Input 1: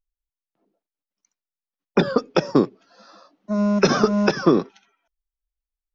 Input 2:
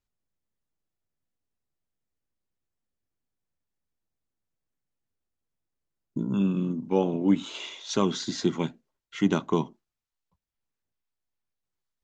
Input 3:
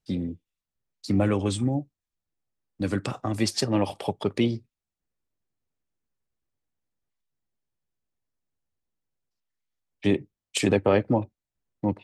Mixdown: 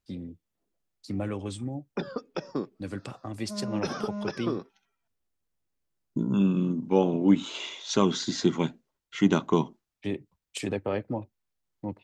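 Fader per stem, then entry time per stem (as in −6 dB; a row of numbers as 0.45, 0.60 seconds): −14.5, +1.5, −9.0 decibels; 0.00, 0.00, 0.00 seconds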